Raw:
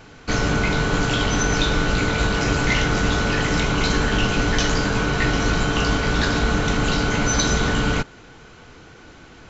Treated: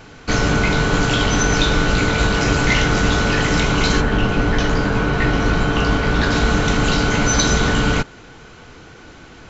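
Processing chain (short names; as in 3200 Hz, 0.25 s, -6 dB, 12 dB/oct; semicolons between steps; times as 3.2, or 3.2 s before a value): 4–6.3 LPF 1500 Hz -> 3100 Hz 6 dB/oct; gain +3.5 dB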